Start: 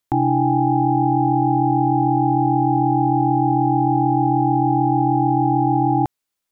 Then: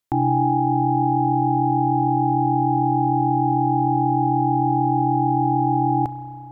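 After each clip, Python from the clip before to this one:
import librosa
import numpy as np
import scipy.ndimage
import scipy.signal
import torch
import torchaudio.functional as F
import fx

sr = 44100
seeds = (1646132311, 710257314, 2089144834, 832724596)

y = fx.rev_spring(x, sr, rt60_s=3.1, pass_ms=(31,), chirp_ms=25, drr_db=9.5)
y = y * librosa.db_to_amplitude(-2.5)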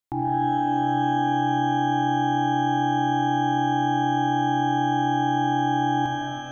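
y = fx.rev_shimmer(x, sr, seeds[0], rt60_s=2.5, semitones=12, shimmer_db=-8, drr_db=0.0)
y = y * librosa.db_to_amplitude(-7.5)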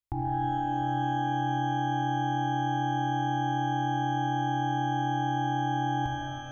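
y = fx.low_shelf_res(x, sr, hz=120.0, db=13.5, q=1.5)
y = y * librosa.db_to_amplitude(-6.0)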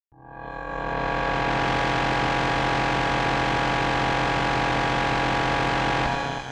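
y = fx.fade_in_head(x, sr, length_s=1.72)
y = fx.cheby_harmonics(y, sr, harmonics=(4, 8), levels_db=(-8, -8), full_scale_db=-17.5)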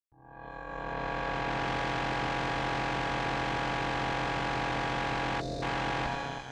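y = fx.spec_box(x, sr, start_s=5.41, length_s=0.22, low_hz=720.0, high_hz=3500.0, gain_db=-21)
y = y * librosa.db_to_amplitude(-8.5)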